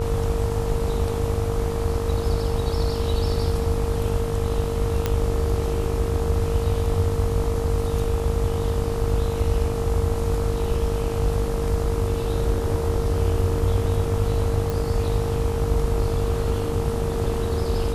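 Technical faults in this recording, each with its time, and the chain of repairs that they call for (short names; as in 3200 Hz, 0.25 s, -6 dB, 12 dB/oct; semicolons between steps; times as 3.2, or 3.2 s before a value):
buzz 50 Hz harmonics 27 -28 dBFS
tone 460 Hz -27 dBFS
5.06 pop -8 dBFS
14.7 pop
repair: de-click; de-hum 50 Hz, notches 27; notch 460 Hz, Q 30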